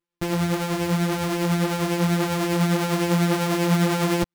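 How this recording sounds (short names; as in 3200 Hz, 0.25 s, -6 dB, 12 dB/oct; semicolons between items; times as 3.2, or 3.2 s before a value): a buzz of ramps at a fixed pitch in blocks of 256 samples; tremolo triangle 10 Hz, depth 45%; a shimmering, thickened sound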